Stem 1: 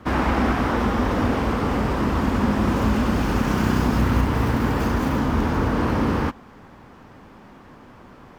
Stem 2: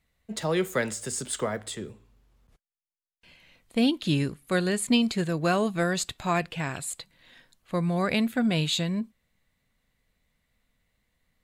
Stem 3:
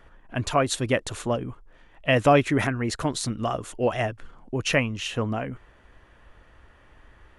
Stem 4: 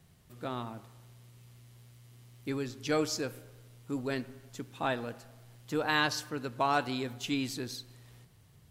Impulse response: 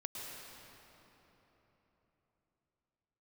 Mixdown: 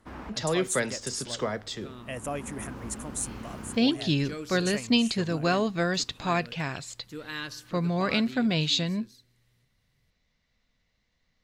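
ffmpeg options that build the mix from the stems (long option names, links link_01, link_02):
-filter_complex "[0:a]volume=-20dB[link_01];[1:a]highshelf=frequency=7500:width_type=q:width=3:gain=-12,volume=-1dB,asplit=2[link_02][link_03];[2:a]lowpass=9100,aexciter=amount=11.3:drive=7.6:freq=6800,volume=-16.5dB[link_04];[3:a]equalizer=frequency=780:width_type=o:width=0.77:gain=-14,adelay=1400,volume=-6dB,afade=type=out:start_time=8.28:duration=0.33:silence=0.375837[link_05];[link_03]apad=whole_len=369961[link_06];[link_01][link_06]sidechaincompress=threshold=-43dB:ratio=8:attack=7.7:release=745[link_07];[link_07][link_02][link_04][link_05]amix=inputs=4:normalize=0"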